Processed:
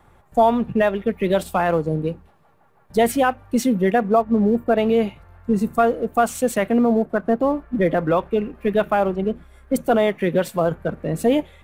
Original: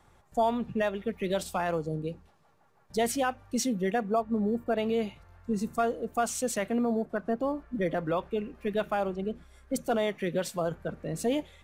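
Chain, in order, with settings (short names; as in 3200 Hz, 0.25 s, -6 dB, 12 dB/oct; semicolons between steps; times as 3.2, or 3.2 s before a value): bell 5800 Hz -10.5 dB 1.4 oct; in parallel at -8 dB: crossover distortion -45 dBFS; on the sum: gain +8 dB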